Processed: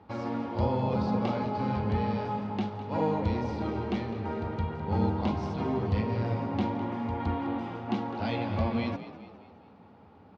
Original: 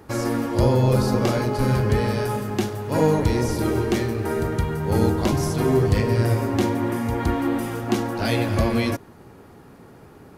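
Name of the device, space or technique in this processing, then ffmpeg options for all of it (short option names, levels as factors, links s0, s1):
frequency-shifting delay pedal into a guitar cabinet: -filter_complex "[0:a]asplit=6[s0][s1][s2][s3][s4][s5];[s1]adelay=206,afreqshift=48,volume=0.211[s6];[s2]adelay=412,afreqshift=96,volume=0.101[s7];[s3]adelay=618,afreqshift=144,volume=0.0484[s8];[s4]adelay=824,afreqshift=192,volume=0.0234[s9];[s5]adelay=1030,afreqshift=240,volume=0.0112[s10];[s0][s6][s7][s8][s9][s10]amix=inputs=6:normalize=0,highpass=78,equalizer=f=87:t=q:w=4:g=8,equalizer=f=140:t=q:w=4:g=-9,equalizer=f=200:t=q:w=4:g=7,equalizer=f=370:t=q:w=4:g=-6,equalizer=f=850:t=q:w=4:g=7,equalizer=f=1700:t=q:w=4:g=-6,lowpass=f=4000:w=0.5412,lowpass=f=4000:w=1.3066,volume=0.355"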